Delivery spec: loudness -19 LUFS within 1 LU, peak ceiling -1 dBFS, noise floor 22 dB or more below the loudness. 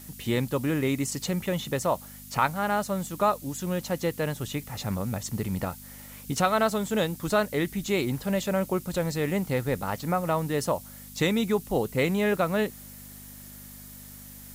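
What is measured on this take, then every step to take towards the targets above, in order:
hum 50 Hz; harmonics up to 250 Hz; hum level -48 dBFS; noise floor -45 dBFS; noise floor target -50 dBFS; loudness -28.0 LUFS; peak -9.0 dBFS; loudness target -19.0 LUFS
-> de-hum 50 Hz, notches 5; denoiser 6 dB, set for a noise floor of -45 dBFS; gain +9 dB; limiter -1 dBFS

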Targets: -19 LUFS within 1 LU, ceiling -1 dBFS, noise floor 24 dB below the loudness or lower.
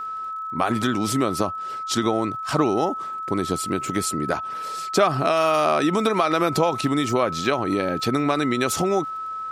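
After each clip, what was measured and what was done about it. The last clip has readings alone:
ticks 41/s; steady tone 1300 Hz; tone level -28 dBFS; loudness -23.0 LUFS; peak -6.0 dBFS; loudness target -19.0 LUFS
-> de-click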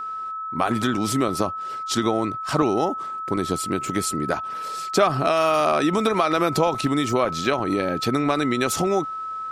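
ticks 0/s; steady tone 1300 Hz; tone level -28 dBFS
-> notch 1300 Hz, Q 30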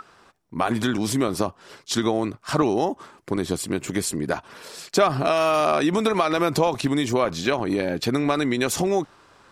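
steady tone none; loudness -23.5 LUFS; peak -7.0 dBFS; loudness target -19.0 LUFS
-> gain +4.5 dB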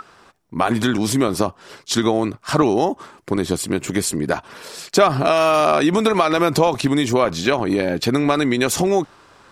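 loudness -19.0 LUFS; peak -2.5 dBFS; noise floor -51 dBFS

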